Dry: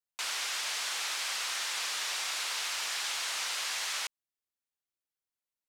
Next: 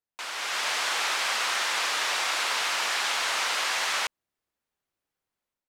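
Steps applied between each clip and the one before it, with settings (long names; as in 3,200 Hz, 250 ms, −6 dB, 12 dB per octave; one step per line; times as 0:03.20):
high-shelf EQ 2,600 Hz −12 dB
automatic gain control gain up to 9 dB
level +4.5 dB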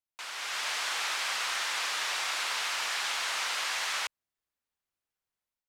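parametric band 320 Hz −5.5 dB 2.7 octaves
level −4 dB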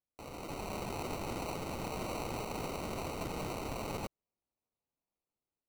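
decimation without filtering 26×
level −6.5 dB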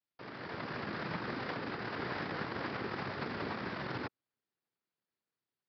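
cochlear-implant simulation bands 3
downsampling to 11,025 Hz
level +1 dB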